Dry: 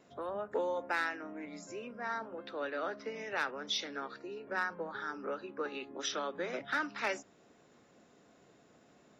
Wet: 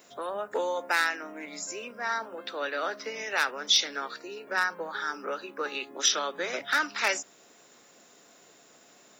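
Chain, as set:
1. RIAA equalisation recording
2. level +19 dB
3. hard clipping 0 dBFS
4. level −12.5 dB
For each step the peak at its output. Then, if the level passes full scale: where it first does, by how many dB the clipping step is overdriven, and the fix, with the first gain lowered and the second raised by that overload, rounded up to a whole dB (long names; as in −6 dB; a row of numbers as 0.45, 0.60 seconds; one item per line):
−14.0, +5.0, 0.0, −12.5 dBFS
step 2, 5.0 dB
step 2 +14 dB, step 4 −7.5 dB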